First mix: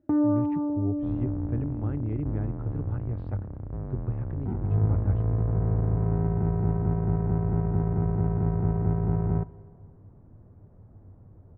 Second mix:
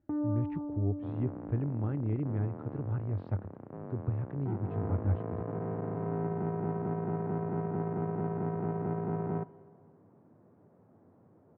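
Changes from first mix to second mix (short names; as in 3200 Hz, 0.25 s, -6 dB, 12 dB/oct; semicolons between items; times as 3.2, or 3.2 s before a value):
speech: send off; first sound -10.0 dB; second sound: add Bessel high-pass 240 Hz, order 4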